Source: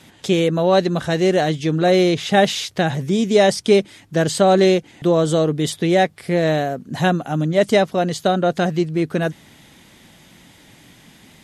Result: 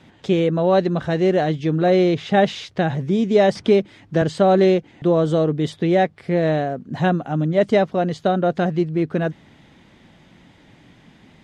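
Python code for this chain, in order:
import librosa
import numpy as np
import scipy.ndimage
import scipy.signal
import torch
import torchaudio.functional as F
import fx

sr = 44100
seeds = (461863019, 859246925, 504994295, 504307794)

y = fx.spacing_loss(x, sr, db_at_10k=21)
y = fx.band_squash(y, sr, depth_pct=40, at=(3.55, 4.22))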